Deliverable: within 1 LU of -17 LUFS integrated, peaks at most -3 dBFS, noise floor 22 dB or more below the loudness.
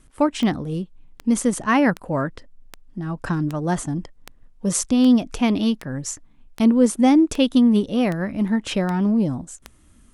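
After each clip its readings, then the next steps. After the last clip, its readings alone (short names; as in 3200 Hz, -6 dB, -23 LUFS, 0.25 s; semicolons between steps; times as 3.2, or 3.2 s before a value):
clicks 13; loudness -20.5 LUFS; peak -5.5 dBFS; loudness target -17.0 LUFS
-> de-click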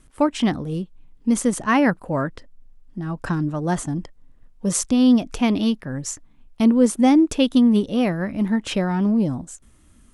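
clicks 0; loudness -20.5 LUFS; peak -5.5 dBFS; loudness target -17.0 LUFS
-> gain +3.5 dB; limiter -3 dBFS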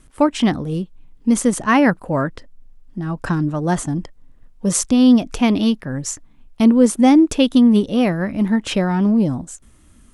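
loudness -17.0 LUFS; peak -3.0 dBFS; noise floor -50 dBFS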